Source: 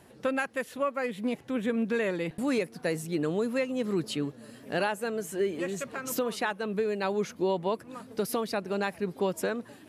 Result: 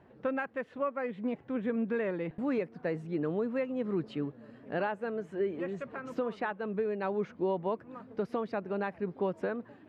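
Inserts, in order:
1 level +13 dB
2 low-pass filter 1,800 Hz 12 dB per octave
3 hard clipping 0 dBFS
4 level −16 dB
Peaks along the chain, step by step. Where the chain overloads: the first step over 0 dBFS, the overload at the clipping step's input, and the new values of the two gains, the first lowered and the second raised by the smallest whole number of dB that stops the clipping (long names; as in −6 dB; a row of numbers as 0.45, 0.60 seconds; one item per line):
−3.5, −5.0, −5.0, −21.0 dBFS
no step passes full scale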